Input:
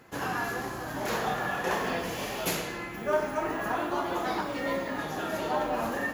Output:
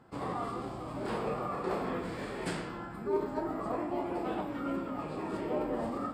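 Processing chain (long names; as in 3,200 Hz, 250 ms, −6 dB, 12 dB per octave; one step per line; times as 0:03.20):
high-shelf EQ 4,500 Hz −11 dB
formants moved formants −6 semitones
level −3.5 dB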